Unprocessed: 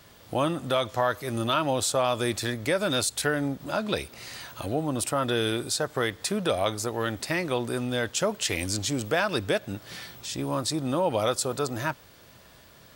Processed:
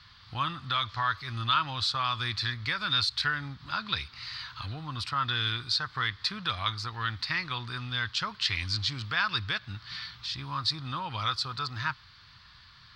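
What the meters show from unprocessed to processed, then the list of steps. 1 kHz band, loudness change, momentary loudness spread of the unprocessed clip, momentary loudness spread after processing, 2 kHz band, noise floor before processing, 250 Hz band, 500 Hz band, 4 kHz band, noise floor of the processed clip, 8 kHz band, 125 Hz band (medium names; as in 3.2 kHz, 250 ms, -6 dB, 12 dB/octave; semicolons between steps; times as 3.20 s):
-1.5 dB, -3.0 dB, 8 LU, 9 LU, +0.5 dB, -53 dBFS, -14.0 dB, -22.0 dB, +3.0 dB, -55 dBFS, -17.0 dB, -2.5 dB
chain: FFT filter 110 Hz 0 dB, 280 Hz -17 dB, 590 Hz -25 dB, 1.1 kHz +2 dB, 2.8 kHz -1 dB, 4.5 kHz +7 dB, 6.9 kHz -19 dB, 12 kHz -29 dB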